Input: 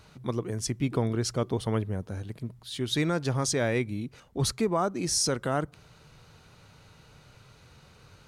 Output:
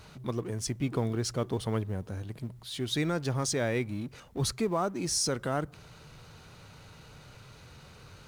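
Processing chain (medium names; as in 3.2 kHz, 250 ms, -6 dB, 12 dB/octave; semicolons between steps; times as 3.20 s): companding laws mixed up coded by mu; trim -3.5 dB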